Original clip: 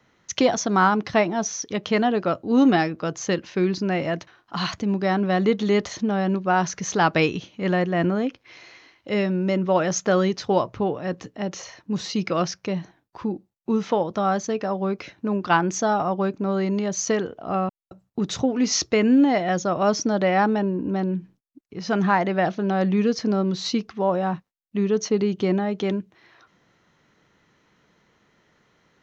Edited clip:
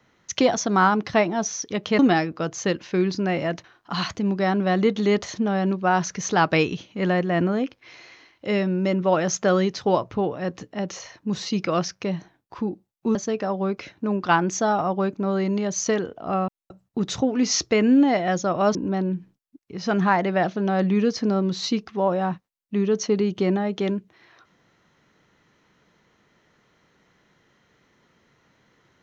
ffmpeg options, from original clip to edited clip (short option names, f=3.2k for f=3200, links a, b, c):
-filter_complex "[0:a]asplit=4[a][b][c][d];[a]atrim=end=1.992[e];[b]atrim=start=2.618:end=13.782[f];[c]atrim=start=14.358:end=19.962[g];[d]atrim=start=20.768[h];[e][f]acrossfade=d=0.004:c1=hsin:c2=hsin[i];[i][g]acrossfade=d=0.004:c1=hsin:c2=hsin[j];[j][h]acrossfade=d=0.004:c1=hsin:c2=hsin"